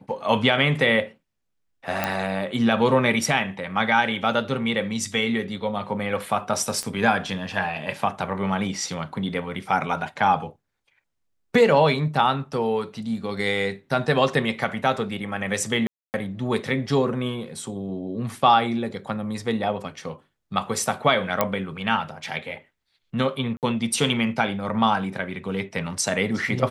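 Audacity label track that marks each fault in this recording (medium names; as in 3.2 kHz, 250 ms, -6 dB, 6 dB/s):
2.040000	2.040000	pop -8 dBFS
6.830000	6.830000	pop -16 dBFS
15.870000	16.140000	dropout 269 ms
21.410000	21.410000	pop -5 dBFS
23.570000	23.630000	dropout 58 ms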